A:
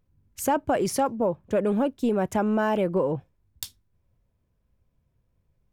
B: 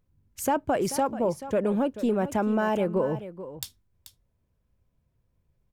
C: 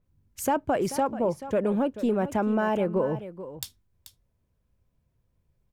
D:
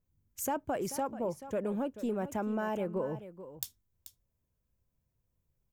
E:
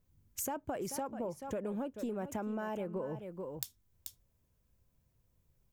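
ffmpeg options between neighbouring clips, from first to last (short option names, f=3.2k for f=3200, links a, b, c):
-af "aecho=1:1:435:0.211,volume=-1.5dB"
-af "adynamicequalizer=threshold=0.00501:dfrequency=3700:dqfactor=0.7:tfrequency=3700:tqfactor=0.7:attack=5:release=100:ratio=0.375:range=3:mode=cutabove:tftype=highshelf"
-af "aexciter=amount=2.3:drive=3.8:freq=5.9k,volume=-8.5dB"
-af "acompressor=threshold=-43dB:ratio=4,volume=6dB"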